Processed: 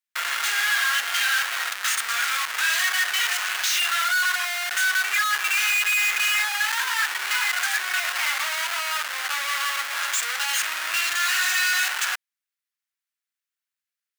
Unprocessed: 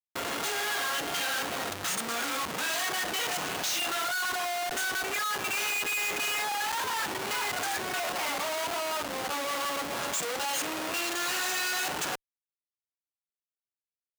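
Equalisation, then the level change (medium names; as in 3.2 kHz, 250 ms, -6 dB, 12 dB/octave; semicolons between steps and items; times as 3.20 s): resonant high-pass 1.6 kHz, resonance Q 1.8; +6.0 dB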